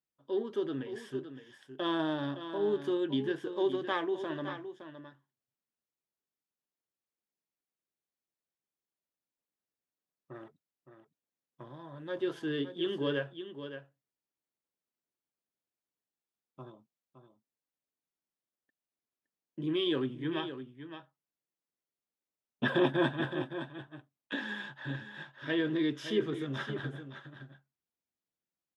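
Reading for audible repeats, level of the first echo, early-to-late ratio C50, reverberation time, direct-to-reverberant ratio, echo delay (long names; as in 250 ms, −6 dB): 1, −10.5 dB, no reverb audible, no reverb audible, no reverb audible, 565 ms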